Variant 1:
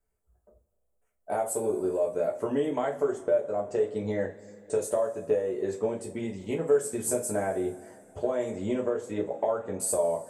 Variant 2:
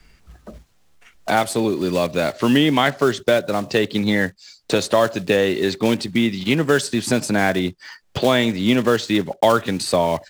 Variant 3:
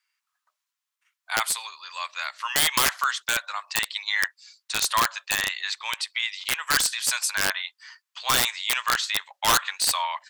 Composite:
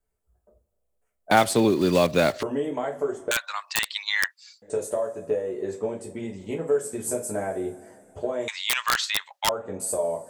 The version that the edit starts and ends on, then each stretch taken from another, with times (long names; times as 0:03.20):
1
0:01.31–0:02.43: punch in from 2
0:03.31–0:04.62: punch in from 3
0:08.48–0:09.49: punch in from 3